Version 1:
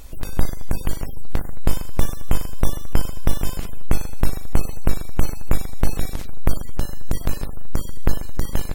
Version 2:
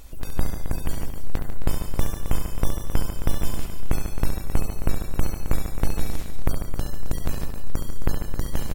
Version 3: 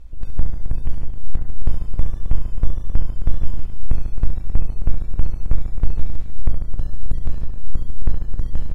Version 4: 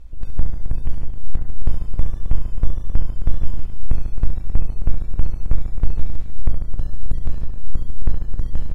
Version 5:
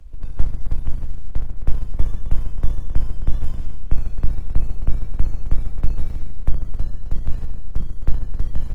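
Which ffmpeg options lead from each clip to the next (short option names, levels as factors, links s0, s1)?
-af "aecho=1:1:69|147|175|266|557:0.398|0.316|0.119|0.316|0.119,volume=0.631"
-af "aemphasis=mode=reproduction:type=bsi,volume=0.335"
-af anull
-filter_complex "[0:a]bandreject=f=390:w=12,acrossover=split=140|190|230[s0][s1][s2][s3];[s1]acrusher=samples=41:mix=1:aa=0.000001:lfo=1:lforange=65.6:lforate=3[s4];[s0][s4][s2][s3]amix=inputs=4:normalize=0" -ar 48000 -c:a libopus -b:a 20k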